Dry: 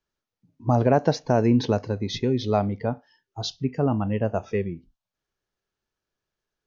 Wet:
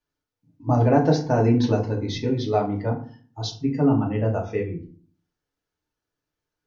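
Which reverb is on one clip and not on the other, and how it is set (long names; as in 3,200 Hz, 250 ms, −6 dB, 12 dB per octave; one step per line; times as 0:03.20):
feedback delay network reverb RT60 0.45 s, low-frequency decay 1.4×, high-frequency decay 0.6×, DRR −1.5 dB
level −3.5 dB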